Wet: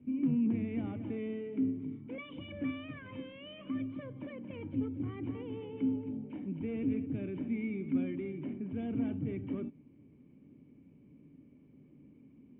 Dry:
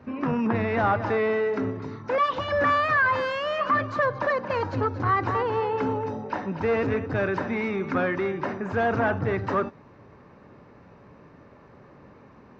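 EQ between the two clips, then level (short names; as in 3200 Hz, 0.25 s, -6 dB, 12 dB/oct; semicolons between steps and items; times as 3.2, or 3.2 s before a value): vocal tract filter i; air absorption 86 m; bell 150 Hz +7 dB 0.2 oct; 0.0 dB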